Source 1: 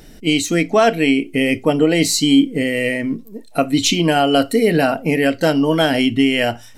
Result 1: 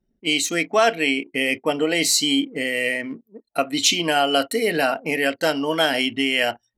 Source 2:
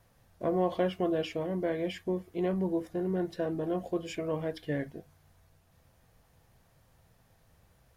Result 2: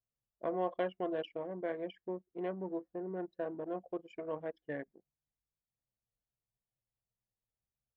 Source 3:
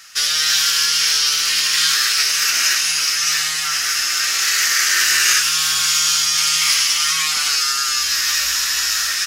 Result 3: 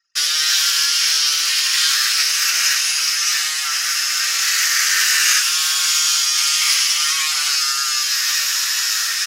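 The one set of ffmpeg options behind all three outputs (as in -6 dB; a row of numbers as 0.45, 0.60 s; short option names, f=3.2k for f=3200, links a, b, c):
-af "anlmdn=15.8,highpass=f=800:p=1"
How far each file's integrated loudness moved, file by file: -4.0, -7.5, 0.0 LU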